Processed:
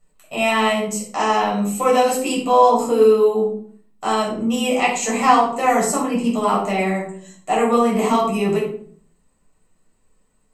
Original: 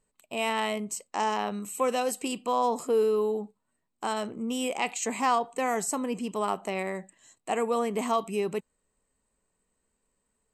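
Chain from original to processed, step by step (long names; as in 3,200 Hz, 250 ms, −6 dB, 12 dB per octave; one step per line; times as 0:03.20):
rectangular room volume 610 cubic metres, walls furnished, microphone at 6.6 metres
level +1.5 dB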